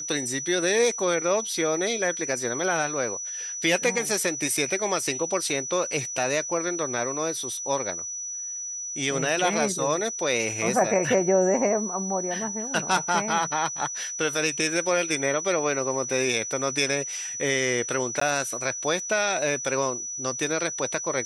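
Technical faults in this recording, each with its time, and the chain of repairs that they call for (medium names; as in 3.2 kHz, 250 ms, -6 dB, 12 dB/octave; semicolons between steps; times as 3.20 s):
whine 5.9 kHz -31 dBFS
18.20–18.21 s: dropout 14 ms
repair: band-stop 5.9 kHz, Q 30; interpolate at 18.20 s, 14 ms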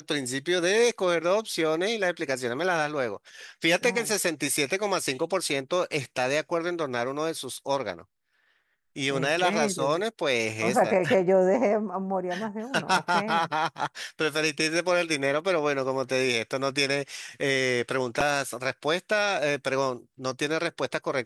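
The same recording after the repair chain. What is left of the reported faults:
nothing left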